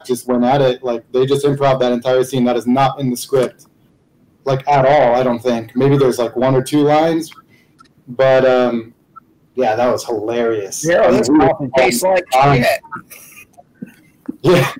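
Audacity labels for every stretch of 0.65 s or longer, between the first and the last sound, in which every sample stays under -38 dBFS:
3.630000	4.460000	silence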